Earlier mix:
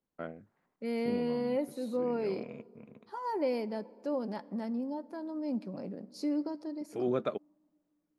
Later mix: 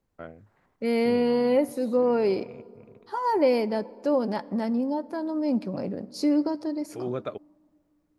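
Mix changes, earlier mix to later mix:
second voice +10.5 dB; master: add resonant low shelf 130 Hz +8.5 dB, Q 1.5

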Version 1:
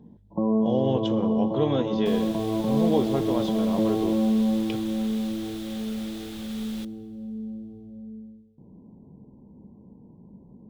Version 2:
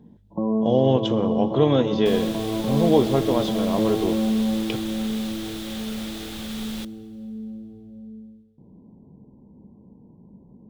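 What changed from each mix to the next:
speech +6.0 dB; second sound +6.5 dB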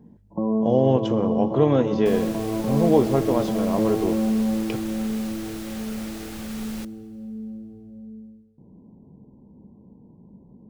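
master: add peaking EQ 3.5 kHz -11.5 dB 0.5 oct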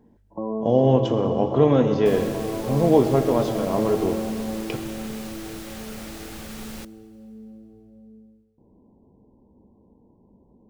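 speech: send +7.5 dB; first sound: add peaking EQ 160 Hz -13 dB 1.2 oct

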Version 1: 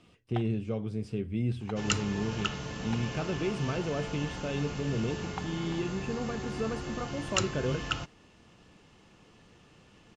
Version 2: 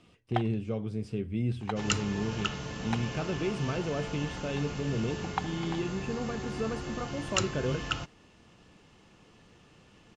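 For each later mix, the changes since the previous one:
first sound +7.5 dB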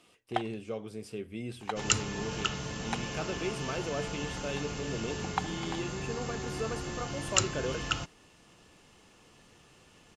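speech: add tone controls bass -14 dB, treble 0 dB; master: remove distance through air 72 m

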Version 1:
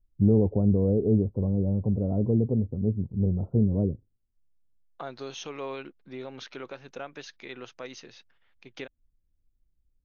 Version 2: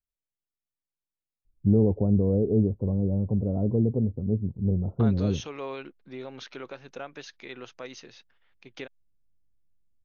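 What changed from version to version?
first voice: entry +1.45 s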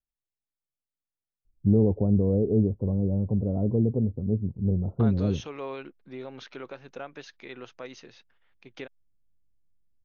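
master: add treble shelf 3.9 kHz -6.5 dB

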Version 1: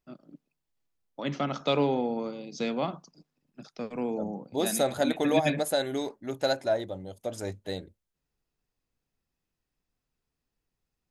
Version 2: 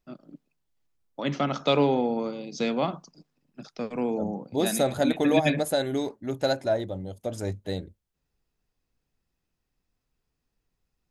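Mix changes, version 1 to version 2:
first voice +3.5 dB; second voice: add bass shelf 280 Hz +8.5 dB

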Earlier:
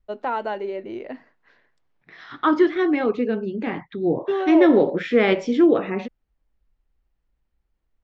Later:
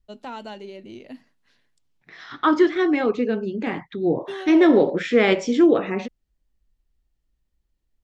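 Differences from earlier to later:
first voice: add high-order bell 850 Hz -11 dB 3 oct; master: remove distance through air 130 m

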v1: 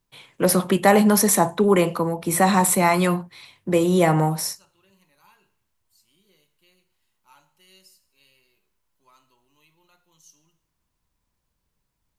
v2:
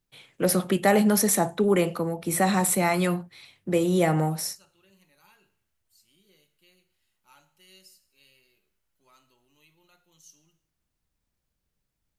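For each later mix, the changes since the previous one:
first voice -4.0 dB; master: add peaking EQ 1 kHz -9 dB 0.3 oct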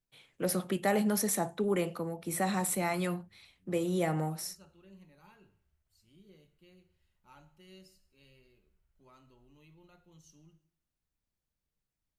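first voice -8.5 dB; second voice: add tilt EQ -3.5 dB/octave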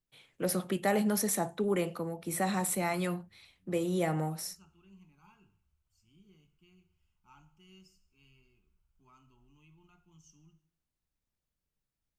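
second voice: add static phaser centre 2.7 kHz, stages 8

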